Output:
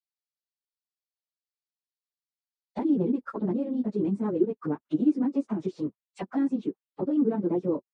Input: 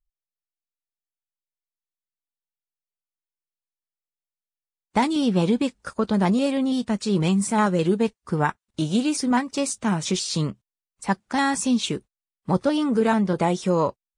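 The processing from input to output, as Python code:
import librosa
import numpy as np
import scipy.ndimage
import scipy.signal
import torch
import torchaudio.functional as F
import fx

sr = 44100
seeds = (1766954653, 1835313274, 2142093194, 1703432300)

y = fx.auto_wah(x, sr, base_hz=310.0, top_hz=4500.0, q=3.2, full_db=-21.5, direction='down')
y = fx.stretch_vocoder_free(y, sr, factor=0.56)
y = fx.high_shelf(y, sr, hz=8000.0, db=-4.0)
y = F.gain(torch.from_numpy(y), 5.5).numpy()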